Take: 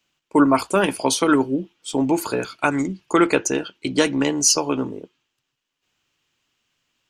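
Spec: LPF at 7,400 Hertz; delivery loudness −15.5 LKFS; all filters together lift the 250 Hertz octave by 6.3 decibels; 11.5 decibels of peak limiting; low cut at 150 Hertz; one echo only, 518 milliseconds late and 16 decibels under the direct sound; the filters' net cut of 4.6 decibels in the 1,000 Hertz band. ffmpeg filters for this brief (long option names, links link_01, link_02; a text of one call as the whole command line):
ffmpeg -i in.wav -af "highpass=150,lowpass=7400,equalizer=frequency=250:width_type=o:gain=8.5,equalizer=frequency=1000:width_type=o:gain=-6.5,alimiter=limit=-12dB:level=0:latency=1,aecho=1:1:518:0.158,volume=6.5dB" out.wav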